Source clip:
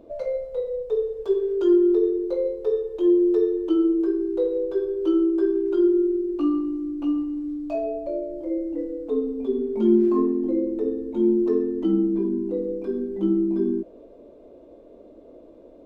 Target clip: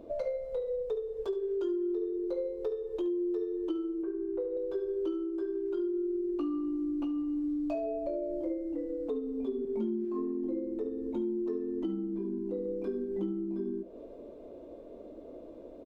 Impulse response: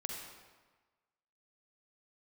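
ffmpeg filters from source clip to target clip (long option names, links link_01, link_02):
-filter_complex "[0:a]asettb=1/sr,asplit=3[link_01][link_02][link_03];[link_01]atrim=end=4.034[link_04];[link_02]atrim=start=4.03:end=4.57,asetpts=PTS-STARTPTS,afade=type=in:duration=0.004:curve=qsin,afade=type=out:start_time=0.536:duration=0.004:curve=qsin,lowpass=frequency=2400:width=0.5412,lowpass=frequency=2400:width=1.3066[link_05];[link_03]atrim=start=4.566[link_06];[link_04][link_05]acrossfade=duration=0.004:curve1=hsin:curve2=qsin[link_07];[link_07][link_06]acrossfade=duration=0.004:curve1=qsin:curve2=hsin,asettb=1/sr,asplit=3[link_08][link_09][link_10];[link_08]atrim=end=9.654[link_11];[link_09]atrim=start=9.65:end=10.05,asetpts=PTS-STARTPTS,afade=type=in:duration=0.004:curve=qsin,afade=type=out:start_time=0.396:duration=0.004:curve=qsin,adynamicequalizer=threshold=0.0316:dfrequency=210:dqfactor=1.2:tfrequency=210:tqfactor=1.2:attack=5:release=100:ratio=0.375:range=3:mode=boostabove:tftype=bell[link_12];[link_10]atrim=start=10.046[link_13];[link_11][link_12]acrossfade=duration=0.004:curve1=hsin:curve2=qsin[link_14];[link_14][link_13]acrossfade=duration=0.004:curve1=qsin:curve2=hsin,acompressor=threshold=-31dB:ratio=10,aecho=1:1:71:0.168"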